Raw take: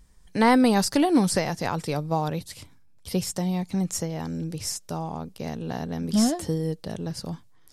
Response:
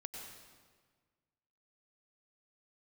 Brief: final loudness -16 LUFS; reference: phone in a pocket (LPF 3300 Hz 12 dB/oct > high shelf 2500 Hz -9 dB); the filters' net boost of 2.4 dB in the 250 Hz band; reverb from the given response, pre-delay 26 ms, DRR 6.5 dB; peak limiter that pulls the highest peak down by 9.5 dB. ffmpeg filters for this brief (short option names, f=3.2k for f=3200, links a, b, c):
-filter_complex "[0:a]equalizer=f=250:t=o:g=3,alimiter=limit=-16dB:level=0:latency=1,asplit=2[a][b];[1:a]atrim=start_sample=2205,adelay=26[c];[b][c]afir=irnorm=-1:irlink=0,volume=-4dB[d];[a][d]amix=inputs=2:normalize=0,lowpass=3.3k,highshelf=f=2.5k:g=-9,volume=11.5dB"